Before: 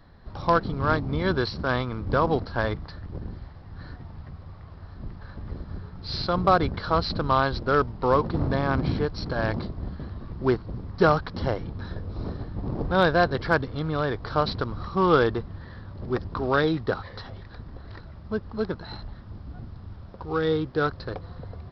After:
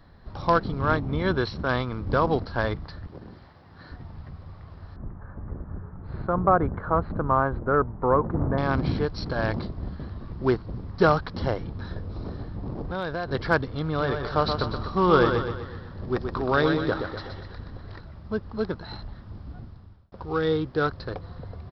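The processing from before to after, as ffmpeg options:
-filter_complex "[0:a]asettb=1/sr,asplit=3[a][b][c];[a]atrim=end=0.814[d];[b]atrim=start=0.81:end=1.69,asetpts=PTS-STARTPTS,afade=t=in:d=0.004:c=qsin,afade=t=out:st=0.876:d=0.004:c=qsin,equalizer=f=4.7k:t=o:w=0.23:g=-10[e];[c]atrim=start=1.686[f];[d][e]acrossfade=d=0.004:c1=hsin:c2=qsin[g];[g][f]acrossfade=d=0.004:c1=qsin:c2=hsin,asettb=1/sr,asplit=3[h][i][j];[h]atrim=end=3.074[k];[i]atrim=start=3.07:end=3.92,asetpts=PTS-STARTPTS,afade=t=in:d=0.004:c=qsin,afade=t=out:st=0.846:d=0.004:c=qsin,highpass=f=280:p=1[l];[j]atrim=start=3.916[m];[k][l]acrossfade=d=0.004:c1=hsin:c2=qsin[n];[n][m]acrossfade=d=0.004:c1=qsin:c2=hsin,asettb=1/sr,asplit=3[o][p][q];[o]atrim=end=4.964[r];[p]atrim=start=4.96:end=8.58,asetpts=PTS-STARTPTS,afade=t=in:d=0.004:c=qsin,afade=t=out:st=3.616:d=0.004:c=qsin,lowpass=f=1.6k:w=0.5412,lowpass=f=1.6k:w=1.3066[s];[q]atrim=start=8.576[t];[r][s]acrossfade=d=0.004:c1=hsin:c2=qsin[u];[u][t]acrossfade=d=0.004:c1=qsin:c2=hsin,asettb=1/sr,asplit=3[v][w][x];[v]atrim=end=12.064[y];[w]atrim=start=12.06:end=13.28,asetpts=PTS-STARTPTS,afade=t=in:d=0.004:c=qsin,afade=t=out:st=1.216:d=0.004:c=qsin,acompressor=threshold=-29dB:ratio=3:attack=3.2:release=140:knee=1:detection=peak[z];[x]atrim=start=13.276[aa];[y][z]acrossfade=d=0.004:c1=hsin:c2=qsin[ab];[ab][aa]acrossfade=d=0.004:c1=qsin:c2=hsin,asplit=3[ac][ad][ae];[ac]afade=t=out:st=13.97:d=0.02[af];[ad]aecho=1:1:124|248|372|496|620|744:0.501|0.246|0.12|0.059|0.0289|0.0142,afade=t=in:st=13.97:d=0.02,afade=t=out:st=17.94:d=0.02[ag];[ae]afade=t=in:st=17.94:d=0.02[ah];[af][ag][ah]amix=inputs=3:normalize=0,asplit=2[ai][aj];[ai]atrim=end=20.12,asetpts=PTS-STARTPTS,afade=t=out:st=19.51:d=0.61[ak];[aj]atrim=start=20.12,asetpts=PTS-STARTPTS,afade=t=in:d=0.004:c=hsin[al];[ak][al]concat=n=2:v=0:a=1"

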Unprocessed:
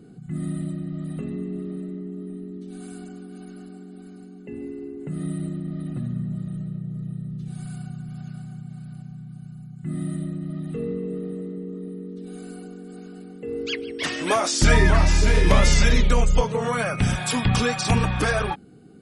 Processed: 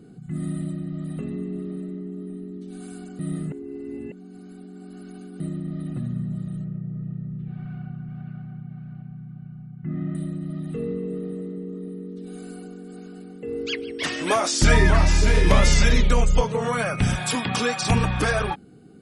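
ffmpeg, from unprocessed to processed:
-filter_complex "[0:a]asettb=1/sr,asplit=3[a][b][c];[a]atrim=end=6.644[d];[b]atrim=start=6.64:end=10.15,asetpts=PTS-STARTPTS,afade=t=in:d=0.004:c=qsin,afade=t=out:st=3.506:d=0.004:c=qsin,lowpass=f=2.5k:w=0.5412,lowpass=f=2.5k:w=1.3066[e];[c]atrim=start=10.146[f];[d][e]acrossfade=d=0.004:c1=hsin:c2=qsin[g];[g][f]acrossfade=d=0.004:c1=qsin:c2=hsin,asettb=1/sr,asplit=3[h][i][j];[h]atrim=end=17.354[k];[i]atrim=start=17.35:end=17.82,asetpts=PTS-STARTPTS,afade=t=in:d=0.004:c=qsin,afade=t=out:st=0.466:d=0.004:c=qsin,highpass=220[l];[j]atrim=start=17.816[m];[k][l]acrossfade=d=0.004:c1=hsin:c2=qsin[n];[n][m]acrossfade=d=0.004:c1=qsin:c2=hsin,asplit=3[o][p][q];[o]atrim=end=3.192[r];[p]atrim=start=3.188:end=5.402,asetpts=PTS-STARTPTS,areverse[s];[q]atrim=start=5.398[t];[r][s]acrossfade=d=0.004:c1=hsin:c2=hsin[u];[u][t]acrossfade=d=0.004:c1=hsin:c2=hsin"

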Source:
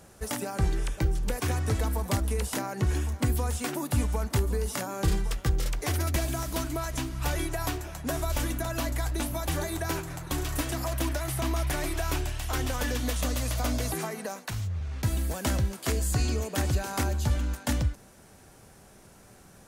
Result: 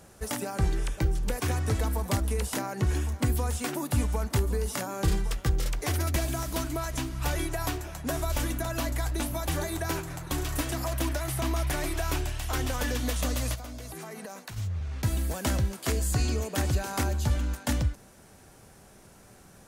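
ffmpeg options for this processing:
-filter_complex "[0:a]asplit=3[a][b][c];[a]afade=t=out:st=13.54:d=0.02[d];[b]acompressor=threshold=-36dB:ratio=12:attack=3.2:release=140:knee=1:detection=peak,afade=t=in:st=13.54:d=0.02,afade=t=out:st=14.56:d=0.02[e];[c]afade=t=in:st=14.56:d=0.02[f];[d][e][f]amix=inputs=3:normalize=0"

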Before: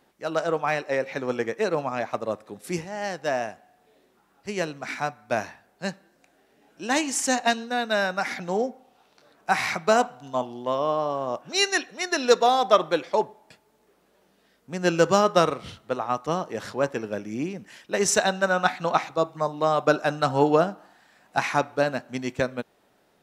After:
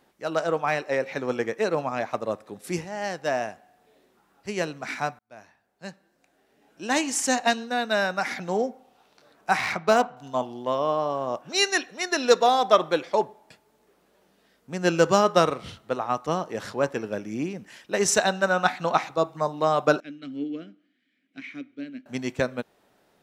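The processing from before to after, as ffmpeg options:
-filter_complex "[0:a]asettb=1/sr,asplit=3[a][b][c];[a]atrim=end=9.574[d];[b]atrim=start=9.57:end=10.17,asetpts=PTS-STARTPTS,afade=t=in:d=0.004:c=qsin,afade=t=out:st=0.596:d=0.004:c=qsin,adynamicsmooth=sensitivity=3.5:basefreq=3.6k[e];[c]atrim=start=10.166[f];[d][e]acrossfade=d=0.004:c1=hsin:c2=qsin[g];[g][f]acrossfade=d=0.004:c1=qsin:c2=hsin,asettb=1/sr,asplit=3[h][i][j];[h]atrim=end=20.004[k];[i]atrim=start=20:end=22.06,asetpts=PTS-STARTPTS,afade=t=in:d=0.004:c=qsin,afade=t=out:st=2.056:d=0.004:c=qsin,asplit=3[l][m][n];[l]bandpass=f=270:t=q:w=8,volume=0dB[o];[m]bandpass=f=2.29k:t=q:w=8,volume=-6dB[p];[n]bandpass=f=3.01k:t=q:w=8,volume=-9dB[q];[o][p][q]amix=inputs=3:normalize=0[r];[j]atrim=start=22.056[s];[k][r]acrossfade=d=0.004:c1=hsin:c2=qsin[t];[t][s]acrossfade=d=0.004:c1=qsin:c2=hsin,asplit=2[u][v];[u]atrim=end=5.19,asetpts=PTS-STARTPTS,afade=t=out:st=5.186:d=0.004:c=hsin[w];[v]atrim=start=5.19,asetpts=PTS-STARTPTS,afade=t=in:d=1.83[x];[w][x]concat=n=2:v=0:a=1"

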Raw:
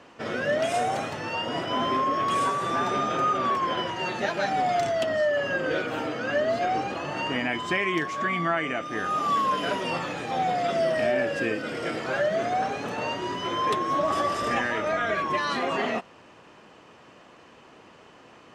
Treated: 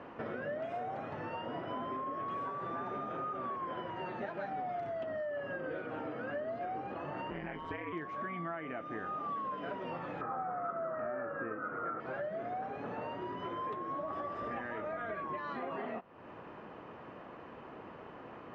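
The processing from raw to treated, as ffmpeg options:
-filter_complex "[0:a]asettb=1/sr,asplit=3[a][b][c];[a]atrim=end=7.304[d];[b]atrim=start=7.3:end=7.93,asetpts=PTS-STARTPTS,afade=t=in:d=0.004:c=qsin,afade=t=out:st=0.626:d=0.004:c=qsin,aeval=exprs='val(0)*sin(2*PI*82*n/s)':c=same[e];[c]atrim=start=7.926[f];[d][e]acrossfade=d=0.004:c1=hsin:c2=qsin[g];[g][f]acrossfade=d=0.004:c1=qsin:c2=hsin,asettb=1/sr,asplit=3[h][i][j];[h]atrim=end=10.214[k];[i]atrim=start=10.21:end=12,asetpts=PTS-STARTPTS,afade=t=in:d=0.004:c=qsin,afade=t=out:st=1.786:d=0.004:c=qsin,lowpass=f=1.3k:t=q:w=10[l];[j]atrim=start=11.996[m];[k][l]acrossfade=d=0.004:c1=hsin:c2=qsin[n];[n][m]acrossfade=d=0.004:c1=qsin:c2=hsin,lowpass=1.6k,acompressor=threshold=-43dB:ratio=4,volume=3dB"

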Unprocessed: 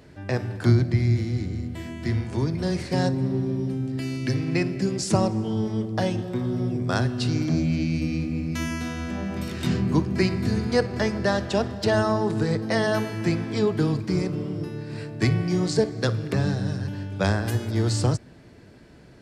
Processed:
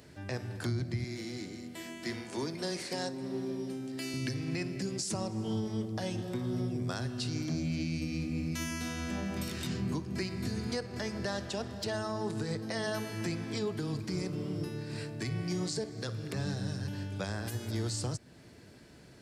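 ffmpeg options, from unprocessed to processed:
-filter_complex "[0:a]asettb=1/sr,asplit=3[a][b][c];[a]atrim=end=1.044[d];[b]atrim=start=1.04:end=4.14,asetpts=PTS-STARTPTS,afade=t=in:d=0.004:c=qsin,afade=t=out:st=3.096:d=0.004:c=qsin,highpass=280[e];[c]atrim=start=4.136[f];[d][e]acrossfade=d=0.004:c1=hsin:c2=qsin[g];[g][f]acrossfade=d=0.004:c1=qsin:c2=hsin,highpass=54,highshelf=f=3.7k:g=10,alimiter=limit=-19.5dB:level=0:latency=1:release=332,volume=-5.5dB"

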